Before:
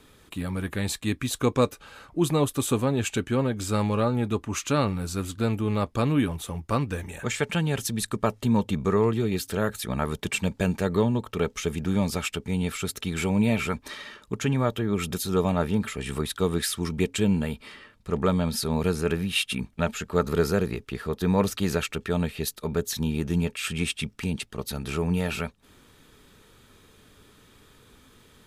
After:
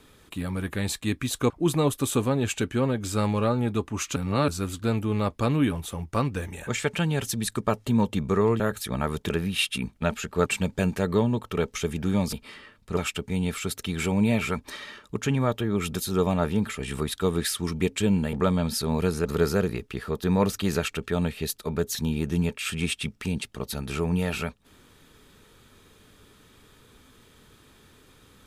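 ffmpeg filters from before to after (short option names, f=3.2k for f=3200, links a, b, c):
-filter_complex "[0:a]asplit=11[a][b][c][d][e][f][g][h][i][j][k];[a]atrim=end=1.502[l];[b]atrim=start=2.058:end=4.722[m];[c]atrim=start=4.718:end=5.042,asetpts=PTS-STARTPTS,areverse[n];[d]atrim=start=5.038:end=9.162[o];[e]atrim=start=9.578:end=10.282[p];[f]atrim=start=19.068:end=20.232[q];[g]atrim=start=10.278:end=12.152[r];[h]atrim=start=17.508:end=18.152[s];[i]atrim=start=12.148:end=17.512[t];[j]atrim=start=18.148:end=19.072[u];[k]atrim=start=20.228[v];[l][m]acrossfade=d=0.004:c1=hsin:c2=hsin[w];[w][n]acrossfade=d=0.004:c1=hsin:c2=hsin[x];[x][o]acrossfade=d=0.004:c1=hsin:c2=hsin[y];[y][p]acrossfade=d=0.004:c1=hsin:c2=hsin[z];[z][q]acrossfade=d=0.004:c1=hsin:c2=hsin[aa];[aa][r]acrossfade=d=0.004:c1=hsin:c2=hsin[ab];[ab][s]acrossfade=d=0.004:c1=hsin:c2=hsin[ac];[ac][t]acrossfade=d=0.004:c1=hsin:c2=hsin[ad];[ad][u]acrossfade=d=0.004:c1=hsin:c2=hsin[ae];[ae][v]acrossfade=d=0.004:c1=hsin:c2=hsin"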